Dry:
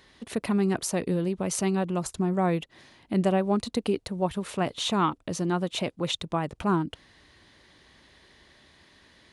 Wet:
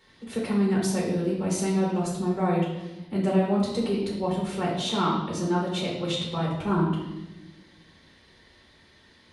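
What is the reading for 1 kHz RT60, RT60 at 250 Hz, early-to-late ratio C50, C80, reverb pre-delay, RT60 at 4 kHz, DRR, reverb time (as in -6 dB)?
0.90 s, 1.7 s, 2.5 dB, 5.5 dB, 6 ms, 1.0 s, -4.0 dB, 1.0 s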